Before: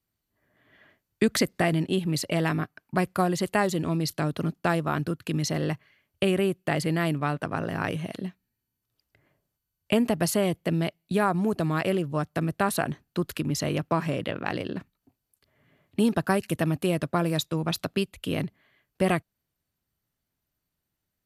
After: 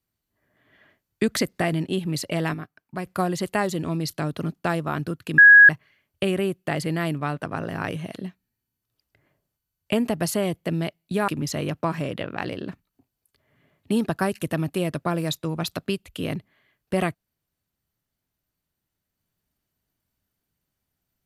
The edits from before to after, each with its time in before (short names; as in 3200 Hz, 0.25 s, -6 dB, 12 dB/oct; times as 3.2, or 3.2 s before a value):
2.54–3.06 gain -6.5 dB
5.38–5.69 bleep 1660 Hz -6.5 dBFS
11.28–13.36 cut